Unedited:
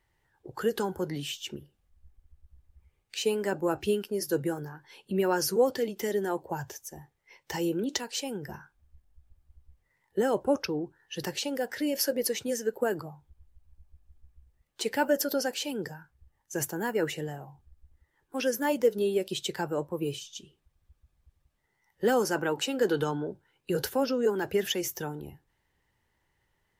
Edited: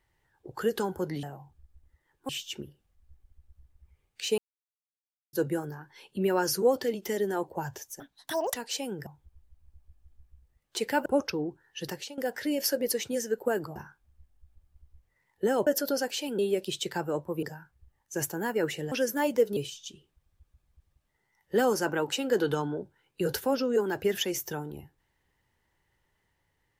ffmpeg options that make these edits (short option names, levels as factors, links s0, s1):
-filter_complex "[0:a]asplit=16[s0][s1][s2][s3][s4][s5][s6][s7][s8][s9][s10][s11][s12][s13][s14][s15];[s0]atrim=end=1.232[s16];[s1]atrim=start=17.308:end=18.372[s17];[s2]atrim=start=1.228:end=3.32,asetpts=PTS-STARTPTS,afade=t=out:st=2.088:d=0.004:c=hsin[s18];[s3]atrim=start=3.32:end=4.27,asetpts=PTS-STARTPTS,volume=0[s19];[s4]atrim=start=4.27:end=6.944,asetpts=PTS-STARTPTS,afade=t=in:d=0.004:c=hsin[s20];[s5]atrim=start=6.94:end=7.97,asetpts=PTS-STARTPTS,asetrate=84672,aresample=44100[s21];[s6]atrim=start=7.966:end=8.502[s22];[s7]atrim=start=13.108:end=15.102[s23];[s8]atrim=start=10.408:end=11.53,asetpts=PTS-STARTPTS,afade=t=out:st=0.732:d=0.39:silence=0.158489[s24];[s9]atrim=start=11.53:end=13.112,asetpts=PTS-STARTPTS,afade=t=in:d=0.004:c=hsin:silence=0.158489[s25];[s10]atrim=start=8.498:end=10.412[s26];[s11]atrim=start=15.098:end=15.822[s27];[s12]atrim=start=19.018:end=20.062[s28];[s13]atrim=start=15.818:end=17.312[s29];[s14]atrim=start=18.368:end=19.022[s30];[s15]atrim=start=20.058[s31];[s16][s17]acrossfade=d=0.004:c1=hsin:c2=hsin[s32];[s18][s19][s20]concat=n=3:v=0:a=1[s33];[s32][s33]acrossfade=d=0.004:c1=hsin:c2=hsin[s34];[s34][s21]acrossfade=d=0.004:c1=hsin:c2=hsin[s35];[s35][s22]acrossfade=d=0.004:c1=hsin:c2=hsin[s36];[s36][s23]acrossfade=d=0.004:c1=hsin:c2=hsin[s37];[s24][s25]concat=n=2:v=0:a=1[s38];[s37][s38]acrossfade=d=0.004:c1=hsin:c2=hsin[s39];[s39][s26]acrossfade=d=0.004:c1=hsin:c2=hsin[s40];[s40][s27]acrossfade=d=0.004:c1=hsin:c2=hsin[s41];[s41][s28]acrossfade=d=0.004:c1=hsin:c2=hsin[s42];[s42][s29]acrossfade=d=0.004:c1=hsin:c2=hsin[s43];[s43][s30]acrossfade=d=0.004:c1=hsin:c2=hsin[s44];[s44][s31]acrossfade=d=0.004:c1=hsin:c2=hsin"